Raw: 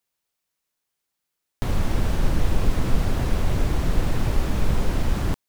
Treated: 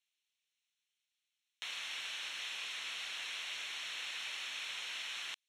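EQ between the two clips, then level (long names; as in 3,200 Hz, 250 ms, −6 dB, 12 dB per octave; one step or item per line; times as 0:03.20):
four-pole ladder band-pass 3,500 Hz, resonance 35%
Butterworth band-reject 4,800 Hz, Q 6.5
+10.0 dB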